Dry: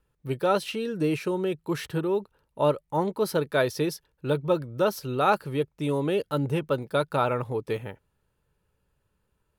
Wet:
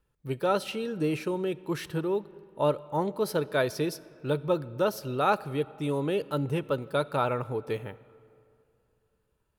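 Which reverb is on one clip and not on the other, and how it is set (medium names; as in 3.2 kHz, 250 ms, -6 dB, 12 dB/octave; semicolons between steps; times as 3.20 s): algorithmic reverb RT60 2.6 s, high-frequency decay 0.6×, pre-delay 5 ms, DRR 19 dB; trim -2.5 dB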